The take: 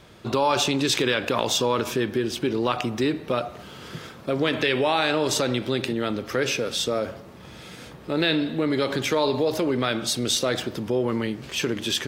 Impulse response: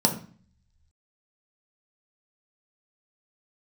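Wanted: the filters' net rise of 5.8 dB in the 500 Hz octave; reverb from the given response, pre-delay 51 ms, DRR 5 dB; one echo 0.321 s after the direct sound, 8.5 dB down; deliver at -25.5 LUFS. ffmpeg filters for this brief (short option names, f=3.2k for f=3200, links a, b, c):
-filter_complex "[0:a]equalizer=f=500:t=o:g=7,aecho=1:1:321:0.376,asplit=2[a][b];[1:a]atrim=start_sample=2205,adelay=51[c];[b][c]afir=irnorm=-1:irlink=0,volume=-18dB[d];[a][d]amix=inputs=2:normalize=0,volume=-7.5dB"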